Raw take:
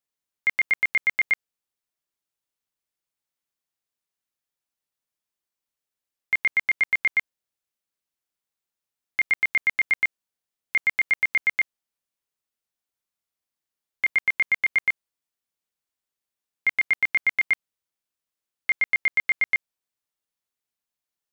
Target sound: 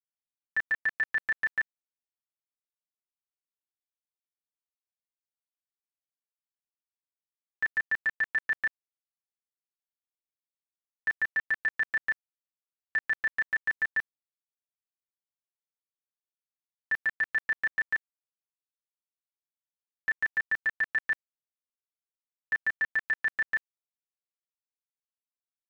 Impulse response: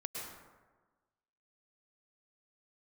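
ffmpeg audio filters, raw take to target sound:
-af "aeval=exprs='val(0)*gte(abs(val(0)),0.00188)':channel_layout=same,asetrate=36603,aresample=44100,aecho=1:1:6.1:0.85,volume=-8.5dB"

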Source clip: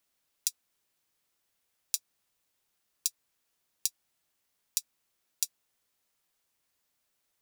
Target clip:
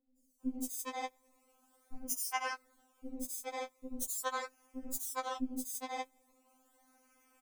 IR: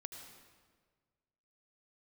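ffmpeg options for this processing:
-filter_complex "[1:a]atrim=start_sample=2205,afade=type=out:start_time=0.23:duration=0.01,atrim=end_sample=10584[link_01];[0:a][link_01]afir=irnorm=-1:irlink=0,areverse,acompressor=threshold=-41dB:ratio=16,areverse,equalizer=frequency=330:width=0.46:gain=12.5,acrusher=samples=21:mix=1:aa=0.000001:lfo=1:lforange=21:lforate=0.4,asuperstop=centerf=1700:order=4:qfactor=7.4,highshelf=frequency=5600:width_type=q:width=1.5:gain=8,acrossover=split=380|5000[link_02][link_03][link_04];[link_04]adelay=170[link_05];[link_03]adelay=410[link_06];[link_02][link_06][link_05]amix=inputs=3:normalize=0,afftfilt=real='re*3.46*eq(mod(b,12),0)':imag='im*3.46*eq(mod(b,12),0)':win_size=2048:overlap=0.75,volume=14dB"

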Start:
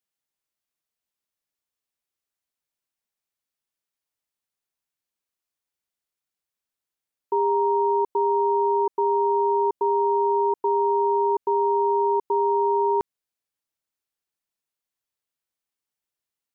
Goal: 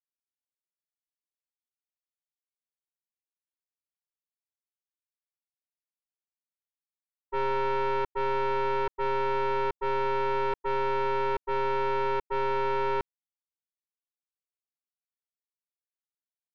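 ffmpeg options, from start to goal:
ffmpeg -i in.wav -af "agate=range=-33dB:threshold=-16dB:ratio=3:detection=peak,asoftclip=type=tanh:threshold=-26.5dB,aeval=exprs='0.0473*(cos(1*acos(clip(val(0)/0.0473,-1,1)))-cos(1*PI/2))+0.0188*(cos(2*acos(clip(val(0)/0.0473,-1,1)))-cos(2*PI/2))':channel_layout=same,volume=1.5dB" out.wav

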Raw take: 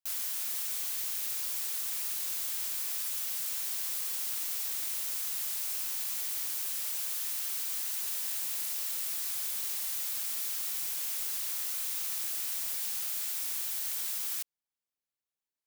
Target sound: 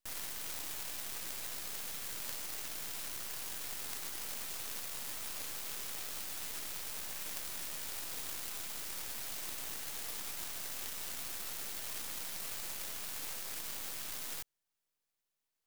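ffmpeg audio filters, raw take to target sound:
ffmpeg -i in.wav -af "aeval=exprs='0.0891*(cos(1*acos(clip(val(0)/0.0891,-1,1)))-cos(1*PI/2))+0.0112*(cos(3*acos(clip(val(0)/0.0891,-1,1)))-cos(3*PI/2))+0.0224*(cos(4*acos(clip(val(0)/0.0891,-1,1)))-cos(4*PI/2))+0.02*(cos(7*acos(clip(val(0)/0.0891,-1,1)))-cos(7*PI/2))':channel_layout=same,aeval=exprs='max(val(0),0)':channel_layout=same,volume=9dB" out.wav

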